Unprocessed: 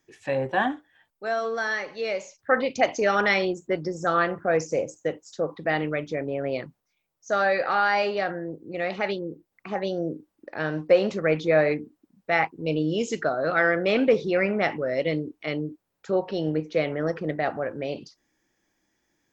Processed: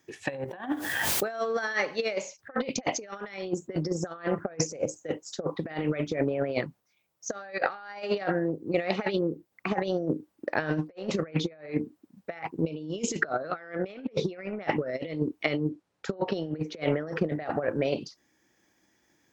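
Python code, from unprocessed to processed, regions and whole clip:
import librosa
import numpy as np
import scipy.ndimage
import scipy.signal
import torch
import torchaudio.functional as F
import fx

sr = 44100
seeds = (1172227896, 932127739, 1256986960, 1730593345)

y = fx.chain(x, sr, fx.high_shelf(hz=5100.0, db=-11.5),
    fx.quant_dither(seeds[0], bits=12, dither='triangular'),
    fx.pre_swell(db_per_s=26.0), at=(0.45, 1.3))
y = fx.chain(y, sr, fx.lowpass(hz=6900.0, slope=12),
    fx.doubler(ms=41.0, db=-13.5), at=(15.69, 16.28))
y = scipy.signal.sosfilt(scipy.signal.butter(2, 63.0, 'highpass', fs=sr, output='sos'), y)
y = fx.over_compress(y, sr, threshold_db=-30.0, ratio=-0.5)
y = fx.transient(y, sr, attack_db=5, sustain_db=-1)
y = F.gain(torch.from_numpy(y), -1.0).numpy()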